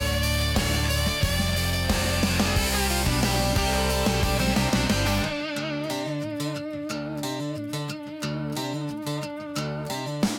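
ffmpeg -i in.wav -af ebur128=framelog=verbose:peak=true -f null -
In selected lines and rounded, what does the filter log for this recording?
Integrated loudness:
  I:         -25.5 LUFS
  Threshold: -35.5 LUFS
Loudness range:
  LRA:         7.7 LU
  Threshold: -45.3 LUFS
  LRA low:   -30.8 LUFS
  LRA high:  -23.1 LUFS
True peak:
  Peak:      -11.4 dBFS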